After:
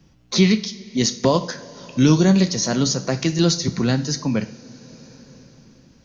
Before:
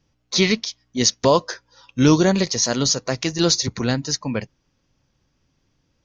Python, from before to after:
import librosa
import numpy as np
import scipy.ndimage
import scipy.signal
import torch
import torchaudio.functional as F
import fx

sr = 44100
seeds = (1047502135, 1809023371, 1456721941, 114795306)

y = fx.peak_eq(x, sr, hz=180.0, db=10.0, octaves=1.1)
y = fx.rev_double_slope(y, sr, seeds[0], early_s=0.44, late_s=3.8, knee_db=-21, drr_db=8.5)
y = fx.band_squash(y, sr, depth_pct=40)
y = y * 10.0 ** (-3.0 / 20.0)